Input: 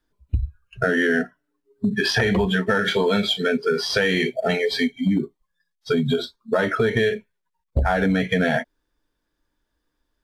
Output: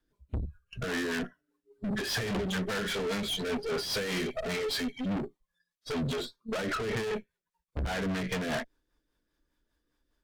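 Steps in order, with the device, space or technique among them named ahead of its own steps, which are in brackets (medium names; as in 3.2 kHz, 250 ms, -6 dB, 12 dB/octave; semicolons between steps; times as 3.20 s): overdriven rotary cabinet (valve stage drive 32 dB, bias 0.7; rotary cabinet horn 5 Hz); trim +3.5 dB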